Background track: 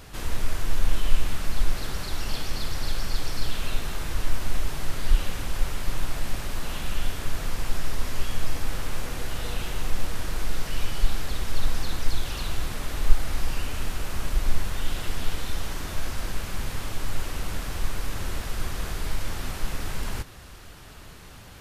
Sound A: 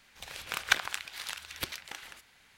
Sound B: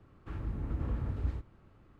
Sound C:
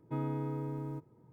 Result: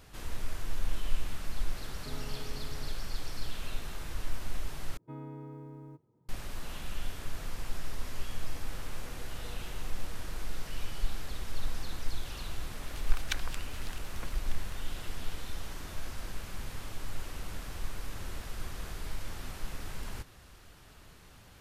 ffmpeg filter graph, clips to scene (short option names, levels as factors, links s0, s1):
-filter_complex "[3:a]asplit=2[s0][s1];[0:a]volume=0.335[s2];[s0]aecho=1:1:4.7:0.74[s3];[1:a]acrossover=split=2000[s4][s5];[s4]aeval=exprs='val(0)*(1-1/2+1/2*cos(2*PI*9.2*n/s))':c=same[s6];[s5]aeval=exprs='val(0)*(1-1/2-1/2*cos(2*PI*9.2*n/s))':c=same[s7];[s6][s7]amix=inputs=2:normalize=0[s8];[s2]asplit=2[s9][s10];[s9]atrim=end=4.974[s11];[s1]atrim=end=1.32,asetpts=PTS-STARTPTS,volume=0.376[s12];[s10]atrim=start=6.286[s13];[s3]atrim=end=1.32,asetpts=PTS-STARTPTS,volume=0.282,afade=t=in:d=0.004:c=hsin,afade=t=out:st=1.316:d=0.004:c=hsin,adelay=1940[s14];[s8]atrim=end=2.57,asetpts=PTS-STARTPTS,volume=0.562,afade=t=in:d=0.004:c=hsin,afade=t=out:st=2.566:d=0.004:c=hsin,adelay=12600[s15];[s11][s12]acrossfade=d=0.004:c1=hsin:c2=hsin[s16];[s16][s13]acrossfade=d=0.004:c1=hsin:c2=hsin[s17];[s17][s14][s15]amix=inputs=3:normalize=0"